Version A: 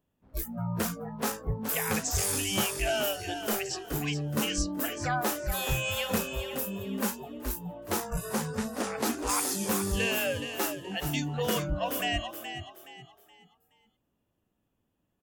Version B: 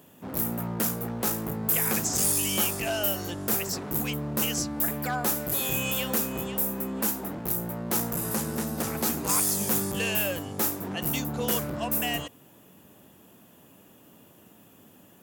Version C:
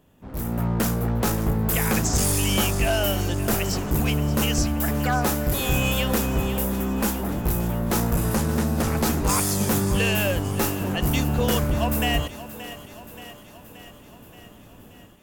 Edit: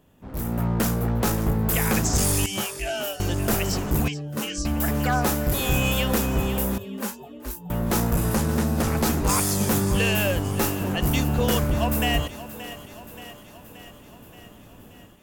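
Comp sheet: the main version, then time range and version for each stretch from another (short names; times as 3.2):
C
2.46–3.2 from A
4.08–4.65 from A
6.78–7.7 from A
not used: B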